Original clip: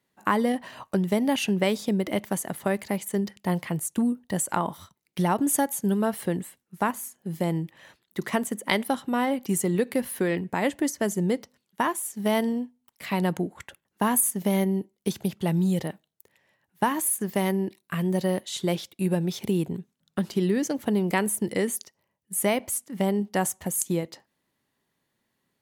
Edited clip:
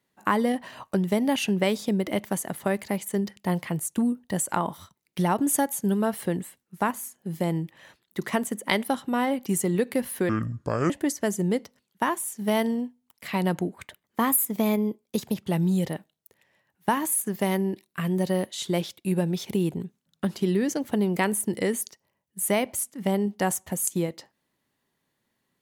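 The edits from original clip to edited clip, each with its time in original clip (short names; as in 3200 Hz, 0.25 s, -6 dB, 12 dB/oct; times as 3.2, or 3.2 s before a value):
10.29–10.68 speed 64%
13.52–15.3 speed 110%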